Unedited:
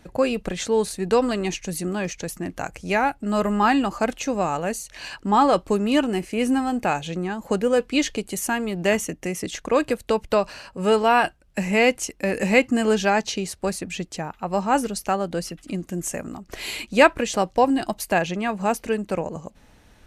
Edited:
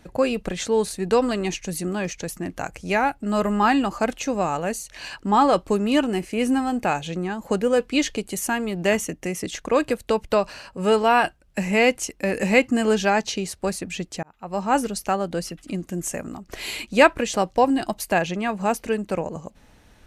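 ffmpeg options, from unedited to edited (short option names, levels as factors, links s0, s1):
-filter_complex "[0:a]asplit=2[s0][s1];[s0]atrim=end=14.23,asetpts=PTS-STARTPTS,afade=t=out:st=14.226:d=0.004:c=hsin[s2];[s1]atrim=start=14.23,asetpts=PTS-STARTPTS,afade=t=in:d=0.49[s3];[s2][s3]concat=n=2:v=0:a=1"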